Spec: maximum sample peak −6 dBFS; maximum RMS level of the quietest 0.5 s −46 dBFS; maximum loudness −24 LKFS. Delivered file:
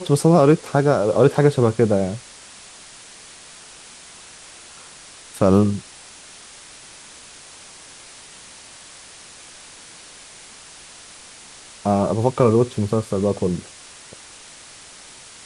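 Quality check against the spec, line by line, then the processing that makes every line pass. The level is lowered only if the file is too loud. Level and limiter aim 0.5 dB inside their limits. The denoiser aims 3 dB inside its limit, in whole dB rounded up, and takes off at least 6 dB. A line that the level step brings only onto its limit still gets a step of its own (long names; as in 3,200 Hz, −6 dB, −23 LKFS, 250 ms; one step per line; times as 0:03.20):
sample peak −2.5 dBFS: out of spec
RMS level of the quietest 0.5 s −43 dBFS: out of spec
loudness −18.5 LKFS: out of spec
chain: level −6 dB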